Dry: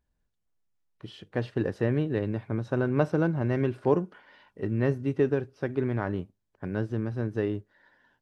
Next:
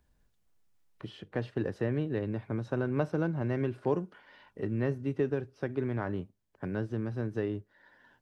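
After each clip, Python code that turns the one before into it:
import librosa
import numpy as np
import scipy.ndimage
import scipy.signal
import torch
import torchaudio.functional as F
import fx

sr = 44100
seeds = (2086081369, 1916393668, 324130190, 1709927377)

y = fx.band_squash(x, sr, depth_pct=40)
y = y * librosa.db_to_amplitude(-4.5)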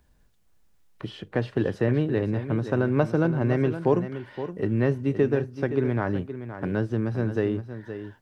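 y = x + 10.0 ** (-11.0 / 20.0) * np.pad(x, (int(519 * sr / 1000.0), 0))[:len(x)]
y = y * librosa.db_to_amplitude(7.5)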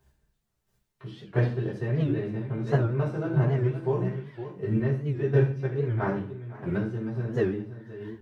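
y = fx.chopper(x, sr, hz=1.5, depth_pct=60, duty_pct=15)
y = fx.rev_fdn(y, sr, rt60_s=0.48, lf_ratio=1.2, hf_ratio=1.0, size_ms=45.0, drr_db=-8.0)
y = fx.record_warp(y, sr, rpm=78.0, depth_cents=160.0)
y = y * librosa.db_to_amplitude(-8.0)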